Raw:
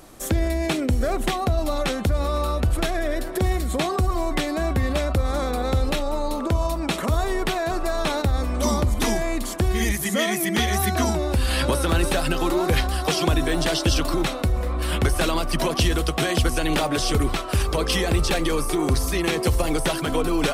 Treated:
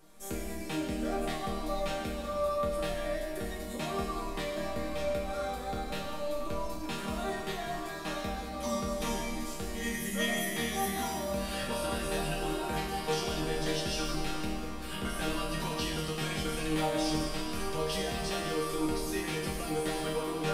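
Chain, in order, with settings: chord resonator D#3 major, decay 0.64 s; algorithmic reverb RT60 2.2 s, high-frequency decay 1×, pre-delay 65 ms, DRR 3.5 dB; trim +8 dB

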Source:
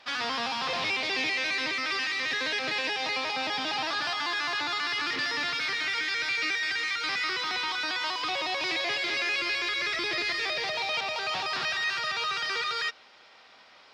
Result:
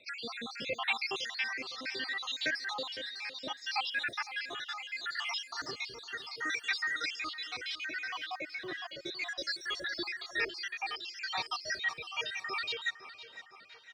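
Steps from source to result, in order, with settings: random holes in the spectrogram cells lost 78%; rotary cabinet horn 0.7 Hz, later 6 Hz, at 9.99 s; 7.86–9.06 s: graphic EQ 500/4000/8000 Hz -4/-4/-12 dB; on a send: feedback delay 509 ms, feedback 49%, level -14.5 dB; on the sum: trim +2 dB

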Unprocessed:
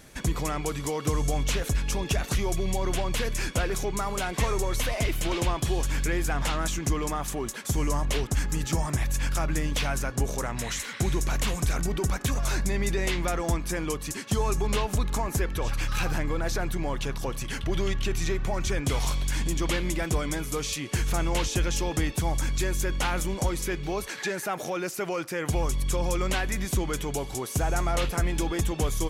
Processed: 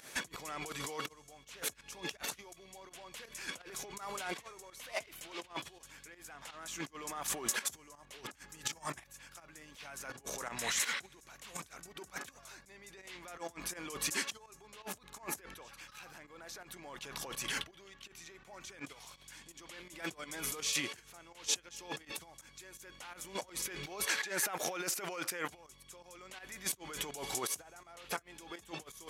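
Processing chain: compressor with a negative ratio -33 dBFS, ratio -0.5; high-pass 810 Hz 6 dB/octave; volume shaper 83 bpm, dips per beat 2, -13 dB, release 100 ms; trim -3 dB

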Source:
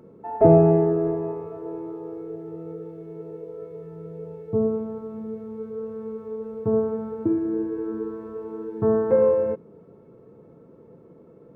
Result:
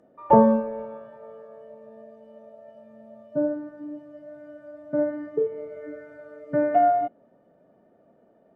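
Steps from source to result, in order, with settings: spectral noise reduction 10 dB; speed mistake 33 rpm record played at 45 rpm; low-pass that closes with the level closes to 2 kHz, closed at -18.5 dBFS

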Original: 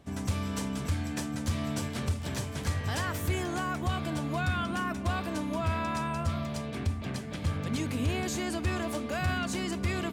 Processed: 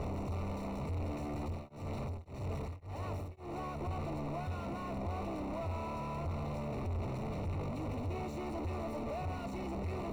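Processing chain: one-bit comparator; boxcar filter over 27 samples; peaking EQ 220 Hz -8 dB 1.9 oct; 1.42–3.81 s: tremolo of two beating tones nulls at 1.8 Hz

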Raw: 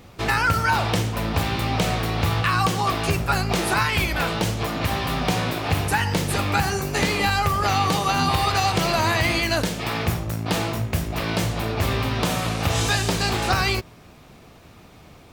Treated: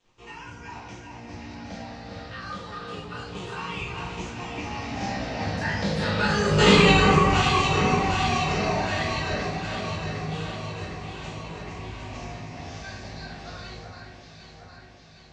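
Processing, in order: drifting ripple filter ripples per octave 0.68, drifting -0.26 Hz, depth 9 dB; Doppler pass-by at 6.72 s, 18 m/s, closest 3.3 m; in parallel at 0 dB: compression, threshold -38 dBFS, peak gain reduction 19.5 dB; on the sum: bit crusher 11-bit; elliptic low-pass 7.1 kHz, stop band 70 dB; on a send: echo whose repeats swap between lows and highs 380 ms, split 2.1 kHz, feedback 78%, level -4.5 dB; on the sum: simulated room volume 110 m³, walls mixed, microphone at 1.7 m; trim -2 dB

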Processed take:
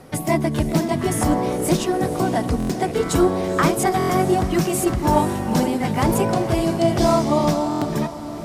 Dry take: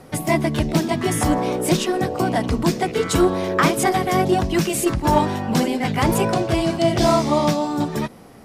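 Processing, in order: dynamic bell 2.9 kHz, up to -5 dB, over -36 dBFS, Q 0.73; echo that smears into a reverb 477 ms, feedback 55%, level -12 dB; buffer glitch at 2.58/3.98/7.70 s, samples 1024, times 4

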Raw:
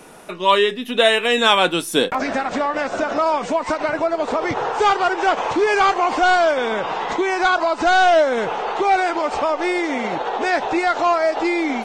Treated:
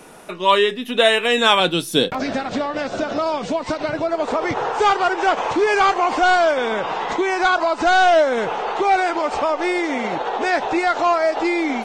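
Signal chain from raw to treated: 1.60–4.09 s: graphic EQ 125/1000/2000/4000/8000 Hz +8/-5/-4/+5/-4 dB

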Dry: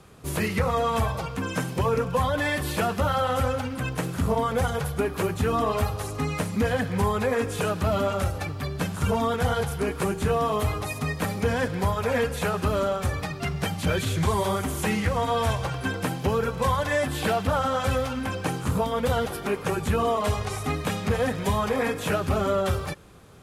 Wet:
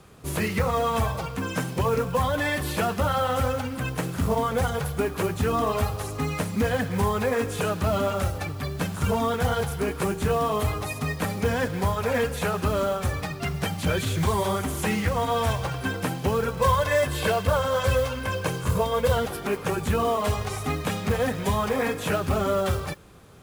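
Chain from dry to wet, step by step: 16.60–19.17 s: comb 1.9 ms, depth 55%; modulation noise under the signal 23 dB

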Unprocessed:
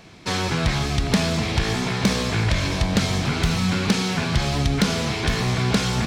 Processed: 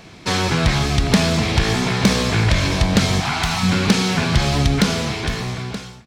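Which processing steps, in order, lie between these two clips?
fade out at the end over 1.42 s; 3.20–3.63 s: resonant low shelf 620 Hz -7 dB, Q 3; trim +4.5 dB

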